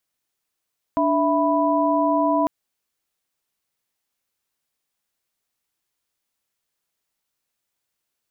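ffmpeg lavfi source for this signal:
ffmpeg -f lavfi -i "aevalsrc='0.0891*(sin(2*PI*293.66*t)+sin(2*PI*659.26*t)+sin(2*PI*987.77*t))':duration=1.5:sample_rate=44100" out.wav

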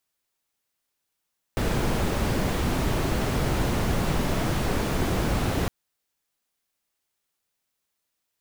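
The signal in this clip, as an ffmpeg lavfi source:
ffmpeg -f lavfi -i "anoisesrc=color=brown:amplitude=0.295:duration=4.11:sample_rate=44100:seed=1" out.wav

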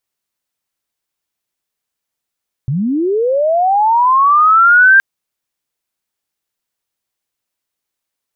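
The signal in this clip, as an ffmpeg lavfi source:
ffmpeg -f lavfi -i "aevalsrc='pow(10,(-13.5+10*t/2.32)/20)*sin(2*PI*(120*t+1480*t*t/(2*2.32)))':duration=2.32:sample_rate=44100" out.wav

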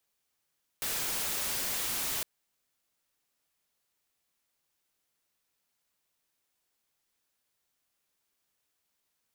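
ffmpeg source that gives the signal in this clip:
ffmpeg -f lavfi -i "anoisesrc=color=white:amplitude=0.0388:duration=1.41:sample_rate=44100:seed=1" out.wav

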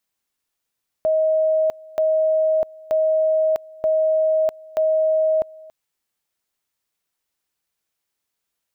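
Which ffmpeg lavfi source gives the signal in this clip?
ffmpeg -f lavfi -i "aevalsrc='pow(10,(-15-23.5*gte(mod(t,0.93),0.65))/20)*sin(2*PI*631*t)':duration=4.65:sample_rate=44100" out.wav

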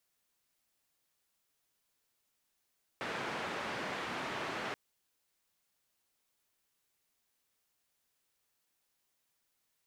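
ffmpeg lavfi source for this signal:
ffmpeg -f lavfi -i "anoisesrc=color=white:duration=1.73:sample_rate=44100:seed=1,highpass=frequency=140,lowpass=frequency=1800,volume=-23.4dB" out.wav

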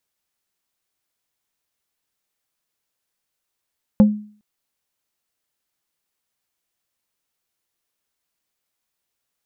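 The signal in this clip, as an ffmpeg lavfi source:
ffmpeg -f lavfi -i "aevalsrc='0.562*pow(10,-3*t/0.45)*sin(2*PI*210*t)+0.178*pow(10,-3*t/0.15)*sin(2*PI*525*t)+0.0562*pow(10,-3*t/0.085)*sin(2*PI*840*t)+0.0178*pow(10,-3*t/0.065)*sin(2*PI*1050*t)+0.00562*pow(10,-3*t/0.048)*sin(2*PI*1365*t)':duration=0.41:sample_rate=44100" out.wav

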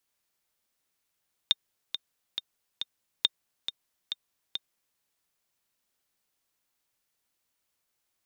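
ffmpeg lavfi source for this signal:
ffmpeg -f lavfi -i "aevalsrc='pow(10,(-8-10*gte(mod(t,4*60/138),60/138))/20)*sin(2*PI*3650*mod(t,60/138))*exp(-6.91*mod(t,60/138)/0.03)':duration=3.47:sample_rate=44100" out.wav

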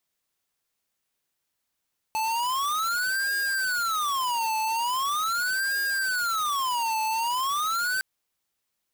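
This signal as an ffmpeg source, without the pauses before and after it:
ffmpeg -f lavfi -i "aevalsrc='0.0473*(2*lt(mod((1248*t-372/(2*PI*0.41)*sin(2*PI*0.41*t)),1),0.5)-1)':duration=5.86:sample_rate=44100" out.wav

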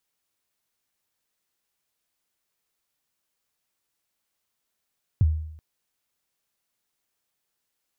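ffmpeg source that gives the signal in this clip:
ffmpeg -f lavfi -i "aevalsrc='0.224*pow(10,-3*t/0.73)*sin(2*PI*(130*0.03/log(78/130)*(exp(log(78/130)*min(t,0.03)/0.03)-1)+78*max(t-0.03,0)))':duration=0.38:sample_rate=44100" out.wav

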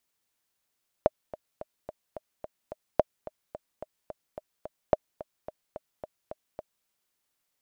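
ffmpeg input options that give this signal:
ffmpeg -f lavfi -i "aevalsrc='pow(10,(-6.5-18*gte(mod(t,7*60/217),60/217))/20)*sin(2*PI*618*mod(t,60/217))*exp(-6.91*mod(t,60/217)/0.03)':duration=5.8:sample_rate=44100" out.wav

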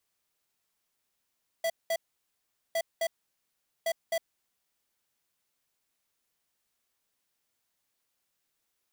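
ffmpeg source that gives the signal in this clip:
ffmpeg -f lavfi -i "aevalsrc='0.0376*(2*lt(mod(661*t,1),0.5)-1)*clip(min(mod(mod(t,1.11),0.26),0.06-mod(mod(t,1.11),0.26))/0.005,0,1)*lt(mod(t,1.11),0.52)':duration=3.33:sample_rate=44100" out.wav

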